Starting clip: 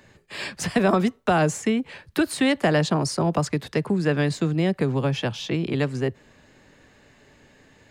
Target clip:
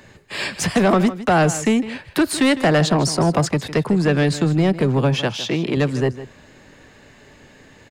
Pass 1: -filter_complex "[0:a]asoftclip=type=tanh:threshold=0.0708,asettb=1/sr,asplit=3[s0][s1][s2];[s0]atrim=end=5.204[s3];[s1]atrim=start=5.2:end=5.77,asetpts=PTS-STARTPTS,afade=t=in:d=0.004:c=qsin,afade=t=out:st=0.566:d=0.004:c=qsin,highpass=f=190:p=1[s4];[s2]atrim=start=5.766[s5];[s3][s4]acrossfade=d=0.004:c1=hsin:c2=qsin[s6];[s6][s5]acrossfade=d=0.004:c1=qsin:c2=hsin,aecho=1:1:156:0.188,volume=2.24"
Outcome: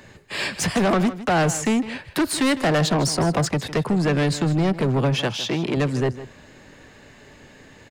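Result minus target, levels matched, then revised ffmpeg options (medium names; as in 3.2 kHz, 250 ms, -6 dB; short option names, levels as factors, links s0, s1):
saturation: distortion +6 dB
-filter_complex "[0:a]asoftclip=type=tanh:threshold=0.15,asettb=1/sr,asplit=3[s0][s1][s2];[s0]atrim=end=5.204[s3];[s1]atrim=start=5.2:end=5.77,asetpts=PTS-STARTPTS,afade=t=in:d=0.004:c=qsin,afade=t=out:st=0.566:d=0.004:c=qsin,highpass=f=190:p=1[s4];[s2]atrim=start=5.766[s5];[s3][s4]acrossfade=d=0.004:c1=hsin:c2=qsin[s6];[s6][s5]acrossfade=d=0.004:c1=qsin:c2=hsin,aecho=1:1:156:0.188,volume=2.24"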